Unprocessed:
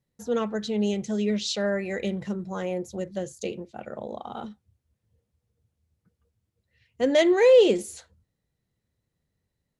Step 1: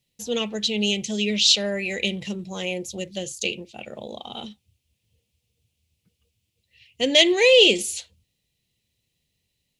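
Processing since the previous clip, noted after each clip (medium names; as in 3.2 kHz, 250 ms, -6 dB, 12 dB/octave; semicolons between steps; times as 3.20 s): resonant high shelf 2 kHz +10.5 dB, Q 3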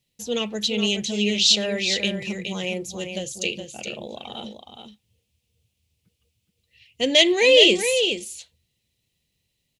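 delay 419 ms -7.5 dB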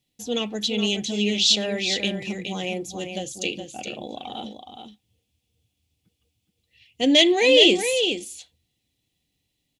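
small resonant body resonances 290/750/3400 Hz, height 11 dB, ringing for 55 ms; trim -2 dB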